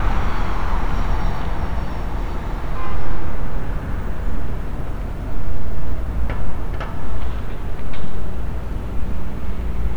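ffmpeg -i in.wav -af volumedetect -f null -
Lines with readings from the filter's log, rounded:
mean_volume: -13.5 dB
max_volume: -3.1 dB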